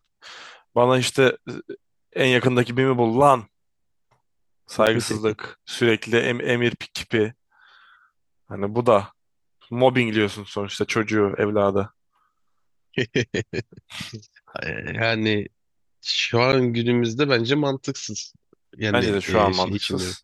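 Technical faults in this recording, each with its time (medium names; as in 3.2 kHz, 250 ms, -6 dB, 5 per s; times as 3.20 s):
4.86–4.87 s: dropout 7.9 ms
16.52–16.53 s: dropout 9.1 ms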